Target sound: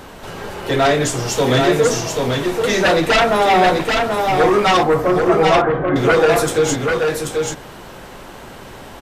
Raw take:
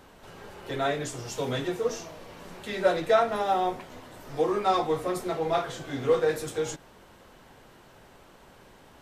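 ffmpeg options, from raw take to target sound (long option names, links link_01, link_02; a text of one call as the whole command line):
ffmpeg -i in.wav -filter_complex "[0:a]asettb=1/sr,asplit=3[link_01][link_02][link_03];[link_01]atrim=end=4.834[link_04];[link_02]atrim=start=4.83:end=5.96,asetpts=PTS-STARTPTS,afade=type=in:duration=0.004:curve=qsin,afade=type=out:start_time=1.126:duration=0.004:curve=qsin,lowpass=frequency=1800:width=0.5412,lowpass=frequency=1800:width=1.3066[link_05];[link_03]atrim=start=5.956[link_06];[link_04][link_05]acrossfade=duration=0.004:curve1=hsin:curve2=qsin[link_07];[link_07][link_06]acrossfade=duration=0.004:curve1=qsin:curve2=hsin,aeval=exprs='0.335*sin(PI/2*3.98*val(0)/0.335)':channel_layout=same,aecho=1:1:785:0.631" out.wav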